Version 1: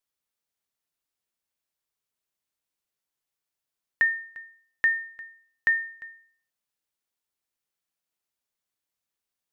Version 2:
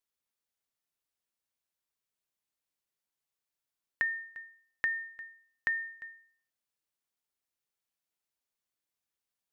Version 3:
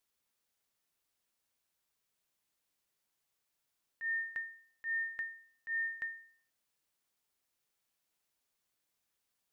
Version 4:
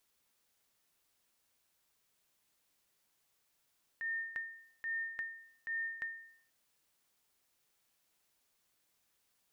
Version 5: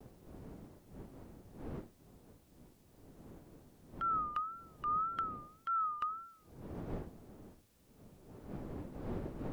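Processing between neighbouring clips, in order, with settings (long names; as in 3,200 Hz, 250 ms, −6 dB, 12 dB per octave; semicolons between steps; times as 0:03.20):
downward compressor, threshold −24 dBFS, peak gain reduction 6 dB; level −3.5 dB
volume swells 192 ms; level +6 dB
downward compressor 2 to 1, threshold −50 dBFS, peak gain reduction 9 dB; level +6 dB
frequency inversion band by band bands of 1,000 Hz; wind on the microphone 320 Hz −53 dBFS; pitch vibrato 1.8 Hz 99 cents; level +4 dB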